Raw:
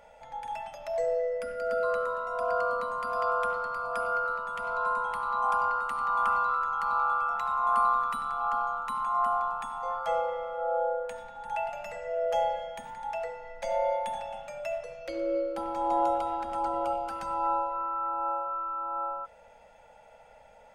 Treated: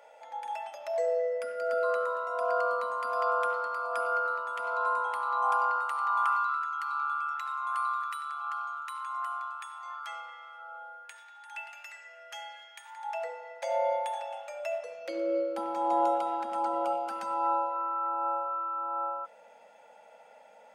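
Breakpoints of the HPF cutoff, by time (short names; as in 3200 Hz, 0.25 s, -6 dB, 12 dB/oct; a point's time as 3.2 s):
HPF 24 dB/oct
5.47 s 340 Hz
6.61 s 1300 Hz
12.78 s 1300 Hz
13.33 s 450 Hz
14.52 s 450 Hz
15.11 s 220 Hz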